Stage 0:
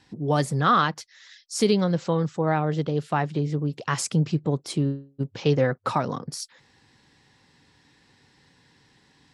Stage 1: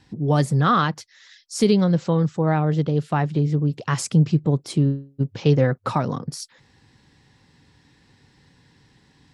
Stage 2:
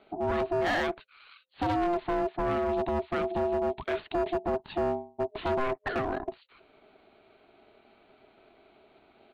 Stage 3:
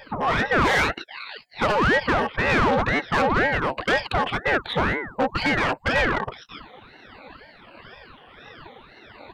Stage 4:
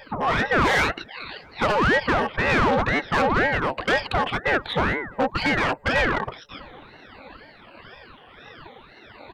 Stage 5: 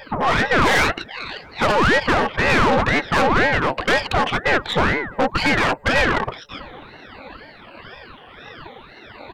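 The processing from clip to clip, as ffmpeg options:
ffmpeg -i in.wav -af "lowshelf=frequency=220:gain=9" out.wav
ffmpeg -i in.wav -af "aresample=8000,asoftclip=type=tanh:threshold=-21dB,aresample=44100,aeval=exprs='val(0)*sin(2*PI*520*n/s)':channel_layout=same,volume=23.5dB,asoftclip=hard,volume=-23.5dB" out.wav
ffmpeg -i in.wav -filter_complex "[0:a]afftfilt=real='re*pow(10,23/40*sin(2*PI*(1.2*log(max(b,1)*sr/1024/100)/log(2)-(-1.5)*(pts-256)/sr)))':imag='im*pow(10,23/40*sin(2*PI*(1.2*log(max(b,1)*sr/1024/100)/log(2)-(-1.5)*(pts-256)/sr)))':win_size=1024:overlap=0.75,asplit=2[link_01][link_02];[link_02]highpass=frequency=720:poles=1,volume=21dB,asoftclip=type=tanh:threshold=-10.5dB[link_03];[link_01][link_03]amix=inputs=2:normalize=0,lowpass=frequency=4700:poles=1,volume=-6dB,aeval=exprs='val(0)*sin(2*PI*680*n/s+680*0.85/2*sin(2*PI*2*n/s))':channel_layout=same" out.wav
ffmpeg -i in.wav -filter_complex "[0:a]asplit=2[link_01][link_02];[link_02]adelay=657,lowpass=frequency=850:poles=1,volume=-23dB,asplit=2[link_03][link_04];[link_04]adelay=657,lowpass=frequency=850:poles=1,volume=0.51,asplit=2[link_05][link_06];[link_06]adelay=657,lowpass=frequency=850:poles=1,volume=0.51[link_07];[link_01][link_03][link_05][link_07]amix=inputs=4:normalize=0" out.wav
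ffmpeg -i in.wav -af "aeval=exprs='(tanh(7.94*val(0)+0.45)-tanh(0.45))/7.94':channel_layout=same,volume=7dB" out.wav

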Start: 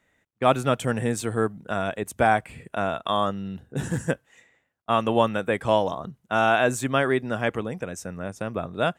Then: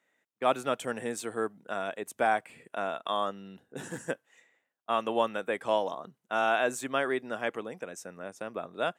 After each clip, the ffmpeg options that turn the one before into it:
ffmpeg -i in.wav -af "highpass=290,volume=-6dB" out.wav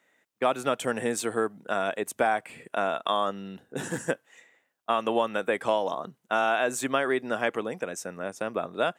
ffmpeg -i in.wav -af "acompressor=threshold=-28dB:ratio=4,volume=7dB" out.wav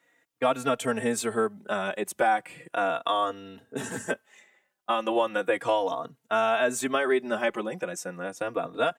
ffmpeg -i in.wav -filter_complex "[0:a]asplit=2[link_01][link_02];[link_02]adelay=3.7,afreqshift=-0.36[link_03];[link_01][link_03]amix=inputs=2:normalize=1,volume=3.5dB" out.wav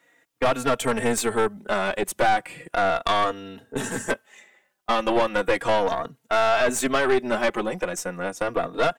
ffmpeg -i in.wav -af "aeval=exprs='(tanh(14.1*val(0)+0.55)-tanh(0.55))/14.1':channel_layout=same,volume=8dB" out.wav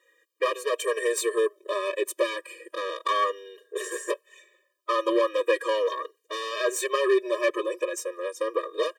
ffmpeg -i in.wav -af "afftfilt=real='re*eq(mod(floor(b*sr/1024/320),2),1)':imag='im*eq(mod(floor(b*sr/1024/320),2),1)':win_size=1024:overlap=0.75" out.wav

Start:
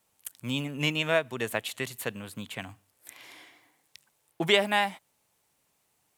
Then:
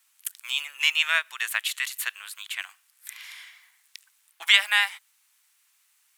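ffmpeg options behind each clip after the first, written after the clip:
ffmpeg -i in.wav -af "highpass=frequency=1300:width=0.5412,highpass=frequency=1300:width=1.3066,volume=7.5dB" out.wav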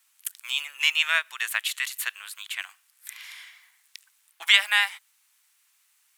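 ffmpeg -i in.wav -af anull out.wav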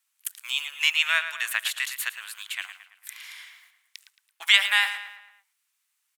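ffmpeg -i in.wav -filter_complex "[0:a]agate=range=-10dB:threshold=-58dB:ratio=16:detection=peak,lowshelf=frequency=370:gain=-5,asplit=2[link_01][link_02];[link_02]adelay=111,lowpass=frequency=4300:poles=1,volume=-10dB,asplit=2[link_03][link_04];[link_04]adelay=111,lowpass=frequency=4300:poles=1,volume=0.5,asplit=2[link_05][link_06];[link_06]adelay=111,lowpass=frequency=4300:poles=1,volume=0.5,asplit=2[link_07][link_08];[link_08]adelay=111,lowpass=frequency=4300:poles=1,volume=0.5,asplit=2[link_09][link_10];[link_10]adelay=111,lowpass=frequency=4300:poles=1,volume=0.5[link_11];[link_03][link_05][link_07][link_09][link_11]amix=inputs=5:normalize=0[link_12];[link_01][link_12]amix=inputs=2:normalize=0" out.wav

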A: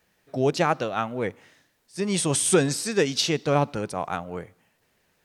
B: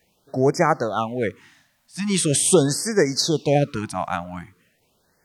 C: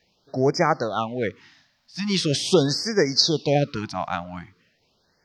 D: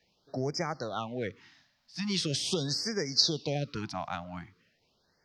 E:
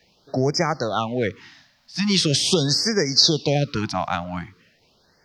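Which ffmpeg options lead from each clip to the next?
ffmpeg -i in.wav -af "afftfilt=real='re*(1-between(b*sr/1024,380*pow(3400/380,0.5+0.5*sin(2*PI*0.42*pts/sr))/1.41,380*pow(3400/380,0.5+0.5*sin(2*PI*0.42*pts/sr))*1.41))':imag='im*(1-between(b*sr/1024,380*pow(3400/380,0.5+0.5*sin(2*PI*0.42*pts/sr))/1.41,380*pow(3400/380,0.5+0.5*sin(2*PI*0.42*pts/sr))*1.41))':win_size=1024:overlap=0.75,volume=4dB" out.wav
ffmpeg -i in.wav -af "highshelf=frequency=6800:width_type=q:width=3:gain=-12,volume=-2dB" out.wav
ffmpeg -i in.wav -filter_complex "[0:a]acrossover=split=130|3000[link_01][link_02][link_03];[link_02]acompressor=threshold=-26dB:ratio=4[link_04];[link_01][link_04][link_03]amix=inputs=3:normalize=0,volume=-5.5dB" out.wav
ffmpeg -i in.wav -af "alimiter=level_in=12.5dB:limit=-1dB:release=50:level=0:latency=1,volume=-1dB" out.wav

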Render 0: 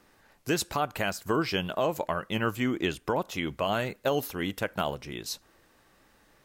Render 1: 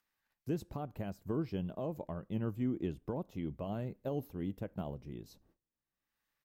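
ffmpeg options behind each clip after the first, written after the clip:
ffmpeg -i in.wav -filter_complex "[0:a]agate=range=-26dB:threshold=-56dB:ratio=16:detection=peak,firequalizer=gain_entry='entry(170,0);entry(420,-7);entry(1400,-21);entry(9500,-24);entry(14000,-16)':delay=0.05:min_phase=1,acrossover=split=1300[link_01][link_02];[link_02]acompressor=mode=upward:threshold=-59dB:ratio=2.5[link_03];[link_01][link_03]amix=inputs=2:normalize=0,volume=-3dB" out.wav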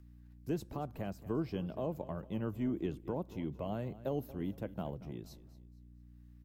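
ffmpeg -i in.wav -filter_complex "[0:a]aecho=1:1:230|460|690:0.141|0.048|0.0163,aeval=exprs='val(0)+0.00158*(sin(2*PI*60*n/s)+sin(2*PI*2*60*n/s)/2+sin(2*PI*3*60*n/s)/3+sin(2*PI*4*60*n/s)/4+sin(2*PI*5*60*n/s)/5)':channel_layout=same,acrossover=split=230[link_01][link_02];[link_01]asoftclip=type=tanh:threshold=-39.5dB[link_03];[link_03][link_02]amix=inputs=2:normalize=0,volume=1.5dB" out.wav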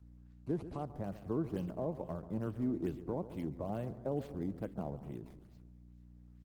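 ffmpeg -i in.wav -filter_complex "[0:a]aecho=1:1:139|278|417|556:0.211|0.0803|0.0305|0.0116,acrossover=split=1700[link_01][link_02];[link_02]acrusher=samples=18:mix=1:aa=0.000001:lfo=1:lforange=28.8:lforate=2.3[link_03];[link_01][link_03]amix=inputs=2:normalize=0" -ar 48000 -c:a libopus -b:a 20k out.opus

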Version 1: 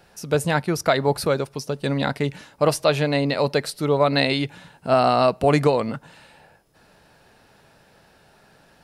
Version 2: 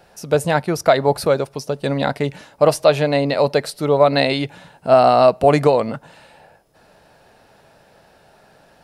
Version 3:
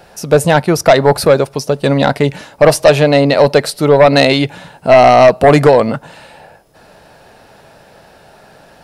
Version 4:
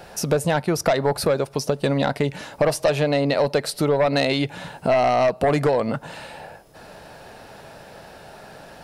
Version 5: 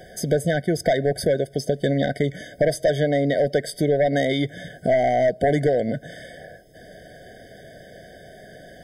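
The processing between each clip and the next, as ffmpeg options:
ffmpeg -i in.wav -af "equalizer=frequency=640:width_type=o:width=1:gain=6,volume=1dB" out.wav
ffmpeg -i in.wav -af "aeval=exprs='0.891*sin(PI/2*1.78*val(0)/0.891)':channel_layout=same" out.wav
ffmpeg -i in.wav -af "acompressor=threshold=-21dB:ratio=3" out.wav
ffmpeg -i in.wav -af "afftfilt=real='re*eq(mod(floor(b*sr/1024/750),2),0)':imag='im*eq(mod(floor(b*sr/1024/750),2),0)':win_size=1024:overlap=0.75" out.wav

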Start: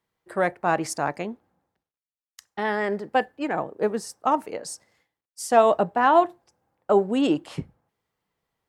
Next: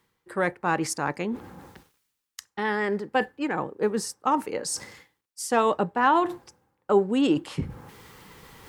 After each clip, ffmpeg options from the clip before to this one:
ffmpeg -i in.wav -af "equalizer=frequency=660:width_type=o:width=0.28:gain=-12.5,areverse,acompressor=mode=upward:threshold=-23dB:ratio=2.5,areverse" out.wav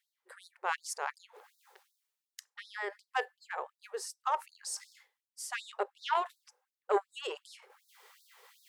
ffmpeg -i in.wav -af "aeval=exprs='0.376*(cos(1*acos(clip(val(0)/0.376,-1,1)))-cos(1*PI/2))+0.0596*(cos(3*acos(clip(val(0)/0.376,-1,1)))-cos(3*PI/2))':channel_layout=same,afftfilt=real='re*gte(b*sr/1024,350*pow(3700/350,0.5+0.5*sin(2*PI*2.7*pts/sr)))':imag='im*gte(b*sr/1024,350*pow(3700/350,0.5+0.5*sin(2*PI*2.7*pts/sr)))':win_size=1024:overlap=0.75,volume=-3dB" out.wav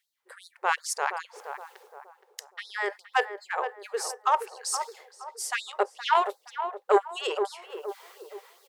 ffmpeg -i in.wav -filter_complex "[0:a]dynaudnorm=framelen=110:gausssize=9:maxgain=4dB,asplit=2[link_01][link_02];[link_02]adelay=470,lowpass=frequency=1000:poles=1,volume=-6.5dB,asplit=2[link_03][link_04];[link_04]adelay=470,lowpass=frequency=1000:poles=1,volume=0.48,asplit=2[link_05][link_06];[link_06]adelay=470,lowpass=frequency=1000:poles=1,volume=0.48,asplit=2[link_07][link_08];[link_08]adelay=470,lowpass=frequency=1000:poles=1,volume=0.48,asplit=2[link_09][link_10];[link_10]adelay=470,lowpass=frequency=1000:poles=1,volume=0.48,asplit=2[link_11][link_12];[link_12]adelay=470,lowpass=frequency=1000:poles=1,volume=0.48[link_13];[link_03][link_05][link_07][link_09][link_11][link_13]amix=inputs=6:normalize=0[link_14];[link_01][link_14]amix=inputs=2:normalize=0,volume=4dB" out.wav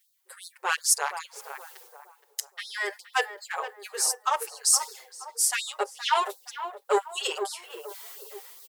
ffmpeg -i in.wav -filter_complex "[0:a]crystalizer=i=5:c=0,asplit=2[link_01][link_02];[link_02]adelay=6.6,afreqshift=-0.88[link_03];[link_01][link_03]amix=inputs=2:normalize=1,volume=-1.5dB" out.wav

